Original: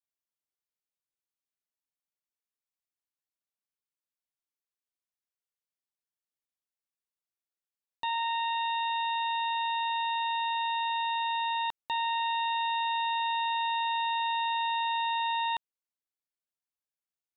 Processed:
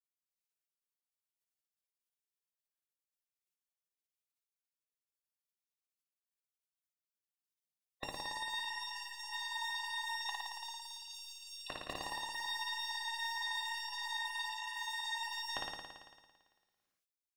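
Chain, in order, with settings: random spectral dropouts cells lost 27%; high shelf 2800 Hz -8 dB; notches 50/100/150/200/250/300/350/400/450/500 Hz; in parallel at -3 dB: soft clip -38.5 dBFS, distortion -11 dB; 10.29–11.67 on the sum: Chebyshev band-stop 500–3000 Hz, order 4; dynamic EQ 1200 Hz, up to -4 dB, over -43 dBFS, Q 1.9; flutter echo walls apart 9.6 m, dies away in 1.5 s; on a send at -5 dB: reverb RT60 0.40 s, pre-delay 3 ms; on the sum: spectral gate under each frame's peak -15 dB weak; gain +5.5 dB

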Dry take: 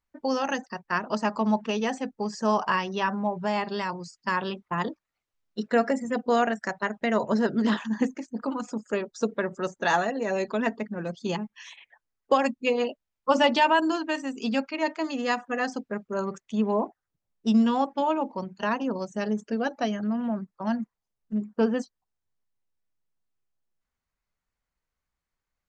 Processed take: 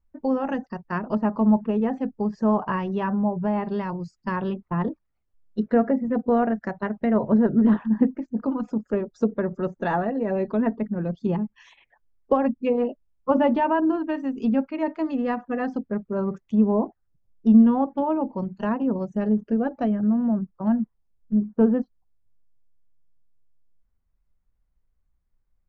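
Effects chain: tilt -4 dB/oct; treble ducked by the level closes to 1900 Hz, closed at -17.5 dBFS; gain -2 dB

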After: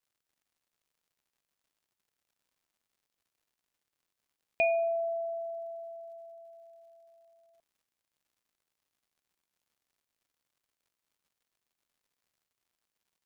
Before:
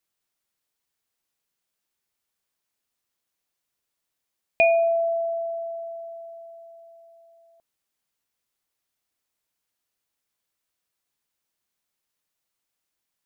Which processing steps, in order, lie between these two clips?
crackle 170/s -57 dBFS; gain -8.5 dB

